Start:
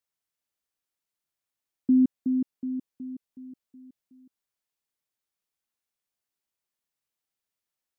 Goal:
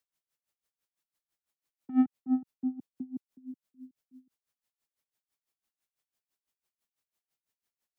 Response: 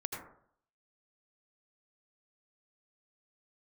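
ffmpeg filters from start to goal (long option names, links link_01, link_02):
-filter_complex "[0:a]acrossover=split=130|210[link_01][link_02][link_03];[link_03]asoftclip=type=tanh:threshold=-30.5dB[link_04];[link_01][link_02][link_04]amix=inputs=3:normalize=0,aeval=exprs='val(0)*pow(10,-21*(0.5-0.5*cos(2*PI*6*n/s))/20)':channel_layout=same,volume=4.5dB"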